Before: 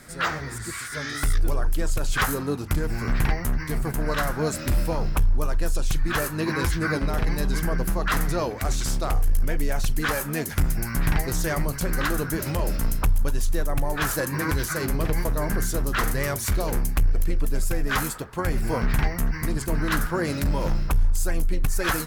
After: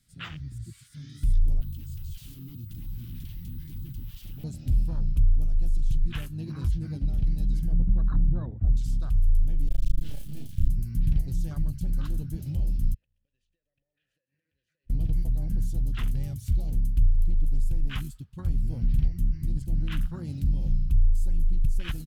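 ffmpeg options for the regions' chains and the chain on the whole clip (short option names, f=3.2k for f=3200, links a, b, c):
-filter_complex "[0:a]asettb=1/sr,asplit=3[a][b][c];[a]atrim=end=1.614[d];[b]atrim=start=1.61:end=4.44,asetpts=PTS-STARTPTS,afade=t=in:d=0.004:c=qsin,afade=t=out:st=2.826:d=0.004:c=qsin,equalizer=f=1.4k:t=o:w=1.8:g=4,aeval=exprs='val(0)+0.0355*sin(2*PI*16000*n/s)':c=same,aeval=exprs='0.0562*(abs(mod(val(0)/0.0562+3,4)-2)-1)':c=same[e];[c]atrim=start=4.436[f];[d][e]acrossfade=d=0.004:c1=hsin:c2=qsin[g];[g][f]acrossfade=d=0.004:c1=qsin:c2=hsin,asettb=1/sr,asplit=3[h][i][j];[h]atrim=end=7.724[k];[i]atrim=start=7.72:end=8.77,asetpts=PTS-STARTPTS,afade=t=in:d=0.004:c=qsin,afade=t=out:st=1.046:d=0.004:c=qsin,lowpass=f=1.3k:w=0.5412,lowpass=f=1.3k:w=1.3066,lowshelf=f=440:g=4[l];[j]atrim=start=8.766[m];[k][l]acrossfade=d=0.004:c1=hsin:c2=qsin[n];[n][m]acrossfade=d=0.004:c1=qsin:c2=hsin,asettb=1/sr,asplit=3[o][p][q];[o]atrim=end=9.674[r];[p]atrim=start=9.67:end=10.69,asetpts=PTS-STARTPTS,afade=t=in:d=0.004:c=qsin,afade=t=out:st=1.016:d=0.004:c=qsin,acrusher=bits=3:dc=4:mix=0:aa=0.000001,asplit=2[s][t];[t]adelay=34,volume=-2.5dB[u];[s][u]amix=inputs=2:normalize=0,atrim=end_sample=44982[v];[q]atrim=start=10.686[w];[r][v]acrossfade=d=0.004:c1=hsin:c2=qsin[x];[x][w]acrossfade=d=0.004:c1=qsin:c2=hsin,asettb=1/sr,asplit=3[y][z][aa];[y]atrim=end=12.944[ab];[z]atrim=start=12.94:end=14.9,asetpts=PTS-STARTPTS,afade=t=in:d=0.004:c=qsin,afade=t=out:st=1.956:d=0.004:c=qsin,asplit=3[ac][ad][ae];[ac]bandpass=f=530:t=q:w=8,volume=0dB[af];[ad]bandpass=f=1.84k:t=q:w=8,volume=-6dB[ag];[ae]bandpass=f=2.48k:t=q:w=8,volume=-9dB[ah];[af][ag][ah]amix=inputs=3:normalize=0,highshelf=f=4k:g=-8.5,acompressor=threshold=-47dB:ratio=16:attack=3.2:release=140:knee=1:detection=peak[ai];[aa]atrim=start=14.896[aj];[ab][ai]acrossfade=d=0.004:c1=hsin:c2=qsin[ak];[ak][aj]acrossfade=d=0.004:c1=qsin:c2=hsin,afwtdn=0.0562,firequalizer=gain_entry='entry(110,0);entry(430,-23);entry(1900,-15);entry(3000,0);entry(5400,-4)':delay=0.05:min_phase=1"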